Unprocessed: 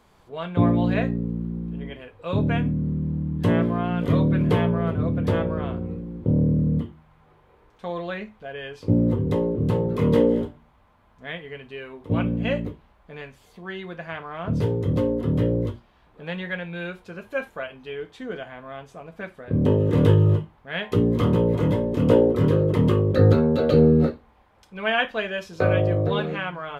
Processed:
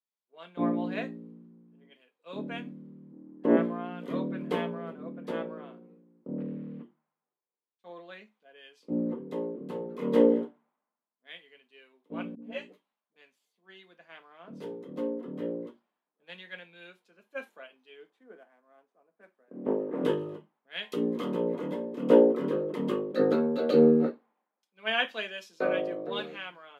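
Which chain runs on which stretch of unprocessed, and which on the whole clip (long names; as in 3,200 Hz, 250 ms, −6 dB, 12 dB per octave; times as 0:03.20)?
0:03.12–0:03.57: one scale factor per block 7 bits + high-pass filter 280 Hz 24 dB per octave + spectral tilt −4.5 dB per octave
0:06.38–0:06.83: one scale factor per block 5 bits + low-pass filter 2,900 Hz 24 dB per octave
0:12.35–0:13.16: all-pass dispersion highs, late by 73 ms, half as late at 530 Hz + string-ensemble chorus
0:18.10–0:20.03: variable-slope delta modulation 64 kbit/s + three-way crossover with the lows and the highs turned down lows −14 dB, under 180 Hz, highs −15 dB, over 2,100 Hz + highs frequency-modulated by the lows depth 0.18 ms
whole clip: Butterworth high-pass 200 Hz 36 dB per octave; multiband upward and downward expander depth 100%; level −9 dB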